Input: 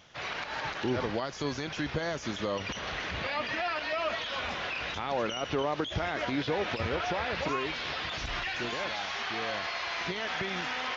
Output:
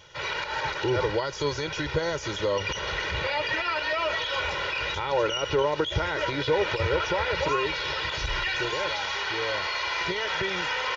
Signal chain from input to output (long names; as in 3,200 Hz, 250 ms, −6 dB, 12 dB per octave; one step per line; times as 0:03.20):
comb filter 2.1 ms, depth 99%
level +2.5 dB